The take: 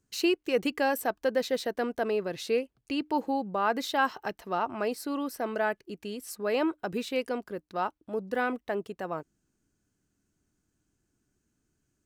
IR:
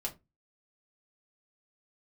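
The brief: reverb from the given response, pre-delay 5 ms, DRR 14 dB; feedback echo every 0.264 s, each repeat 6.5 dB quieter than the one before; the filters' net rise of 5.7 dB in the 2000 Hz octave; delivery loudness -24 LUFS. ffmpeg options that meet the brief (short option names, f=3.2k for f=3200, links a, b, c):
-filter_complex "[0:a]equalizer=f=2k:t=o:g=8,aecho=1:1:264|528|792|1056|1320|1584:0.473|0.222|0.105|0.0491|0.0231|0.0109,asplit=2[a][b];[1:a]atrim=start_sample=2205,adelay=5[c];[b][c]afir=irnorm=-1:irlink=0,volume=-15dB[d];[a][d]amix=inputs=2:normalize=0,volume=4dB"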